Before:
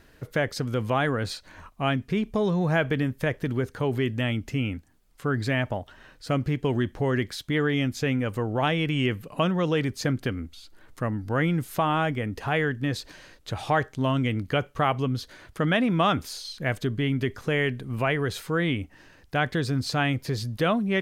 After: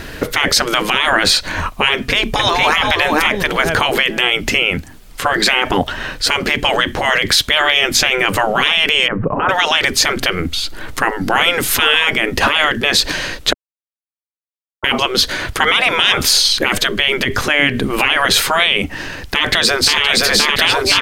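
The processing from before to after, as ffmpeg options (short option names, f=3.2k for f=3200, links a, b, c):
-filter_complex "[0:a]asplit=2[a][b];[b]afade=t=in:st=1.93:d=0.01,afade=t=out:st=2.82:d=0.01,aecho=0:1:460|920|1380:0.501187|0.0751781|0.0112767[c];[a][c]amix=inputs=2:normalize=0,asettb=1/sr,asplit=3[d][e][f];[d]atrim=end=9.084[g];[e]atrim=start=9.08:end=9.49,asetpts=PTS-STARTPTS,afade=t=in:d=0.004:c=qsin,afade=t=out:st=0.406:d=0.004:c=qsin,lowpass=f=1.3k:w=0.5412,lowpass=f=1.3k:w=1.3066[h];[f]atrim=start=9.486[i];[g][h]acrossfade=d=0.004:c1=hsin:c2=qsin[j];[j][i]acrossfade=d=0.004:c1=qsin:c2=hsin,asettb=1/sr,asplit=3[k][l][m];[k]atrim=end=17.244[n];[l]atrim=start=17.24:end=17.84,asetpts=PTS-STARTPTS,afade=t=in:d=0.004:c=qsin,afade=t=out:st=0.596:d=0.004:c=qsin,acompressor=threshold=-32dB:ratio=2.5:attack=3.2:release=140:knee=1:detection=peak[o];[m]atrim=start=17.836[p];[n][o]acrossfade=d=0.004:c1=hsin:c2=qsin[q];[q][p]acrossfade=d=0.004:c1=qsin:c2=hsin,asplit=2[r][s];[s]afade=t=in:st=19.35:d=0.01,afade=t=out:st=20.03:d=0.01,aecho=0:1:520|1040|1560|2080|2600|3120|3640|4160|4680|5200|5720:0.841395|0.546907|0.355489|0.231068|0.150194|0.0976263|0.0634571|0.0412471|0.0268106|0.0174269|0.0113275[t];[r][t]amix=inputs=2:normalize=0,asplit=3[u][v][w];[u]atrim=end=13.53,asetpts=PTS-STARTPTS,afade=t=out:st=13.526:d=0.004:c=hsin[x];[v]atrim=start=13.53:end=14.84,asetpts=PTS-STARTPTS,volume=0[y];[w]atrim=start=14.84,asetpts=PTS-STARTPTS,afade=t=in:d=0.004:c=hsin[z];[x][y][z]concat=n=3:v=0:a=1,afftfilt=real='re*lt(hypot(re,im),0.1)':imag='im*lt(hypot(re,im),0.1)':win_size=1024:overlap=0.75,equalizer=f=3k:t=o:w=1.7:g=3.5,alimiter=level_in=26dB:limit=-1dB:release=50:level=0:latency=1,volume=-1dB"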